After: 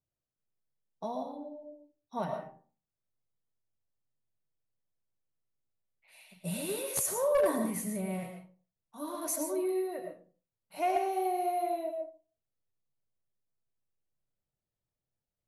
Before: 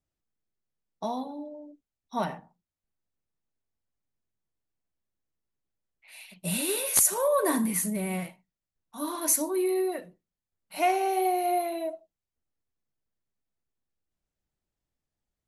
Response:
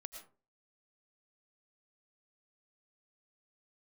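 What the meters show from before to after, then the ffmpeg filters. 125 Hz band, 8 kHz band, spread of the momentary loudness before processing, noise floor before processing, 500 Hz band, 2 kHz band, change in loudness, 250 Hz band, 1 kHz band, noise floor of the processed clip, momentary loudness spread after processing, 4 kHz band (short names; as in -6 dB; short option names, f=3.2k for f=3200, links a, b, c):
-3.5 dB, -10.0 dB, 17 LU, under -85 dBFS, -3.0 dB, -8.0 dB, -6.0 dB, -5.5 dB, -4.5 dB, under -85 dBFS, 17 LU, -9.5 dB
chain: -filter_complex "[0:a]equalizer=f=125:t=o:w=1:g=12,equalizer=f=500:t=o:w=1:g=7,equalizer=f=1k:t=o:w=1:g=3[a];[1:a]atrim=start_sample=2205,asetrate=43659,aresample=44100[b];[a][b]afir=irnorm=-1:irlink=0,volume=16dB,asoftclip=hard,volume=-16dB,volume=-5dB"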